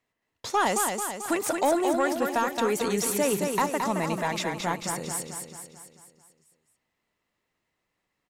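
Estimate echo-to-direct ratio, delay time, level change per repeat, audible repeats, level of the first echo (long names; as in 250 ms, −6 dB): −3.5 dB, 220 ms, −5.5 dB, 6, −5.0 dB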